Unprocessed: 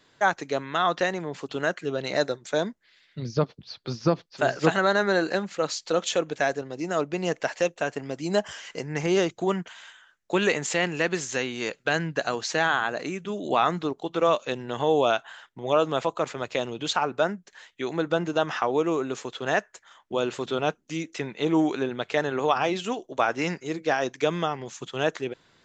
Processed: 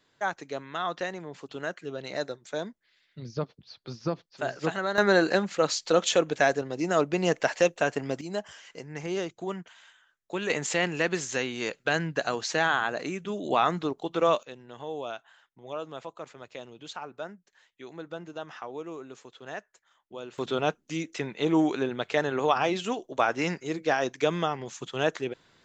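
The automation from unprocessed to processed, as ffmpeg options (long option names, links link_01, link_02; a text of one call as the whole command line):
ffmpeg -i in.wav -af "asetnsamples=nb_out_samples=441:pad=0,asendcmd='4.98 volume volume 2dB;8.21 volume volume -8.5dB;10.5 volume volume -1.5dB;14.43 volume volume -14dB;20.38 volume volume -1dB',volume=-7.5dB" out.wav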